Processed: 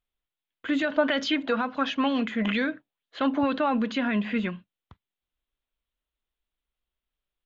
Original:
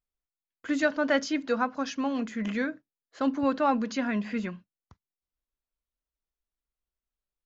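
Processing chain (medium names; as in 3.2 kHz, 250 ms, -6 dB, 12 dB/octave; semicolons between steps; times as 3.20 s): resonant high shelf 4.3 kHz -8 dB, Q 3; peak limiter -21 dBFS, peak gain reduction 9.5 dB; 0.97–3.58 s: sweeping bell 2.1 Hz 620–5800 Hz +10 dB; trim +4 dB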